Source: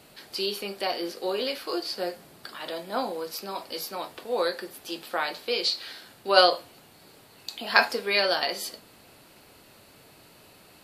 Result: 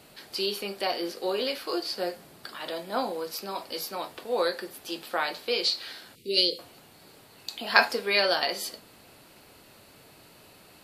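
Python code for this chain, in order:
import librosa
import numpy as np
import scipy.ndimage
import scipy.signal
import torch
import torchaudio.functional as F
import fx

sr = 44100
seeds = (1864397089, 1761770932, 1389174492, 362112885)

y = fx.cheby1_bandstop(x, sr, low_hz=470.0, high_hz=2200.0, order=4, at=(6.15, 6.59))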